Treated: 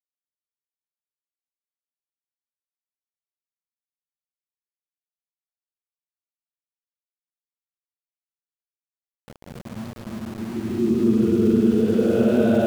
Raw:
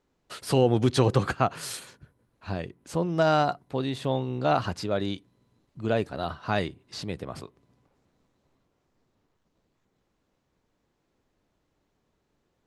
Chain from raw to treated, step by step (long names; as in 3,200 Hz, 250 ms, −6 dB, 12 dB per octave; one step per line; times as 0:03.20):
extreme stretch with random phases 22×, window 0.05 s, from 0:05.35
hollow resonant body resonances 230/360 Hz, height 16 dB, ringing for 50 ms
centre clipping without the shift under −30.5 dBFS
level −3 dB